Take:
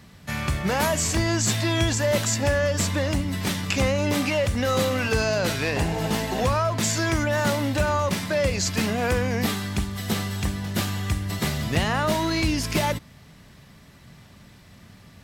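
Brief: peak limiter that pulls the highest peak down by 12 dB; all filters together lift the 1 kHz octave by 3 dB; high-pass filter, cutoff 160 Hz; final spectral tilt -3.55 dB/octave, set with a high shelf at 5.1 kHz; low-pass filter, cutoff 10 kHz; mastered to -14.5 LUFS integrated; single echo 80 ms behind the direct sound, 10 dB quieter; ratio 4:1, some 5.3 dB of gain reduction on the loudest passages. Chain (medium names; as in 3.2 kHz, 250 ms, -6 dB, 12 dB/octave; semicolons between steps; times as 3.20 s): high-pass 160 Hz; low-pass 10 kHz; peaking EQ 1 kHz +3.5 dB; treble shelf 5.1 kHz +3.5 dB; compression 4:1, threshold -24 dBFS; peak limiter -20 dBFS; delay 80 ms -10 dB; trim +14.5 dB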